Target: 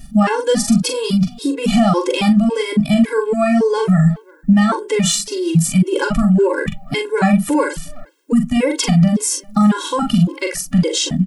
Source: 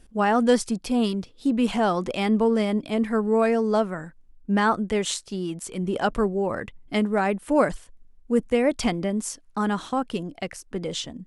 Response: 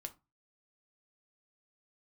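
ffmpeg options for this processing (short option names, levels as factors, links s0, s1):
-filter_complex "[0:a]acontrast=31,equalizer=f=160:t=o:w=0.67:g=12,equalizer=f=630:t=o:w=0.67:g=-3,equalizer=f=10000:t=o:w=0.67:g=-5,acompressor=threshold=0.112:ratio=2.5,aemphasis=mode=production:type=50kf,asoftclip=type=hard:threshold=0.422,asplit=2[s0][s1];[s1]adelay=43,volume=0.531[s2];[s0][s2]amix=inputs=2:normalize=0,asplit=2[s3][s4];[s4]adelay=360,highpass=300,lowpass=3400,asoftclip=type=hard:threshold=0.158,volume=0.0708[s5];[s3][s5]amix=inputs=2:normalize=0,asplit=2[s6][s7];[1:a]atrim=start_sample=2205,asetrate=48510,aresample=44100[s8];[s7][s8]afir=irnorm=-1:irlink=0,volume=0.794[s9];[s6][s9]amix=inputs=2:normalize=0,alimiter=level_in=2.99:limit=0.891:release=50:level=0:latency=1,afftfilt=real='re*gt(sin(2*PI*1.8*pts/sr)*(1-2*mod(floor(b*sr/1024/280),2)),0)':imag='im*gt(sin(2*PI*1.8*pts/sr)*(1-2*mod(floor(b*sr/1024/280),2)),0)':win_size=1024:overlap=0.75,volume=0.708"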